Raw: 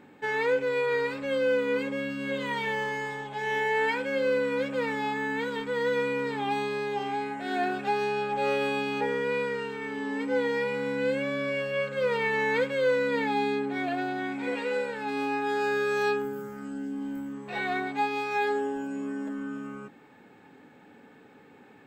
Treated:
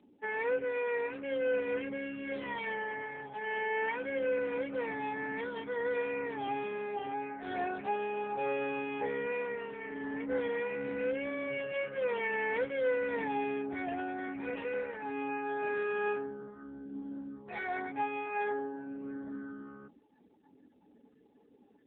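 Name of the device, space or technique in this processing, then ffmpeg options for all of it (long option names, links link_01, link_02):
mobile call with aggressive noise cancelling: -af "highpass=140,afftdn=noise_reduction=29:noise_floor=-47,volume=-5.5dB" -ar 8000 -c:a libopencore_amrnb -b:a 7950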